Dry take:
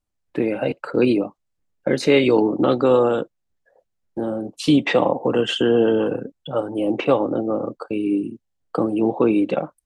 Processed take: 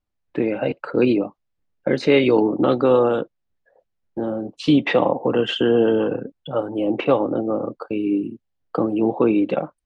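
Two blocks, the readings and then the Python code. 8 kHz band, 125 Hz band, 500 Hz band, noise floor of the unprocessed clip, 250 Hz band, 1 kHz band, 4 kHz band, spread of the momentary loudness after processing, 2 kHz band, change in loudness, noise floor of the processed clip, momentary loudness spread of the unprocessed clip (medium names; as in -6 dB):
no reading, 0.0 dB, 0.0 dB, -75 dBFS, 0.0 dB, 0.0 dB, -1.5 dB, 11 LU, -0.5 dB, 0.0 dB, -75 dBFS, 11 LU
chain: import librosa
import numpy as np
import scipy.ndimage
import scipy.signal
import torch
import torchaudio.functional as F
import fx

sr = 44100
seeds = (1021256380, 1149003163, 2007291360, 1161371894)

y = scipy.signal.sosfilt(scipy.signal.butter(2, 4200.0, 'lowpass', fs=sr, output='sos'), x)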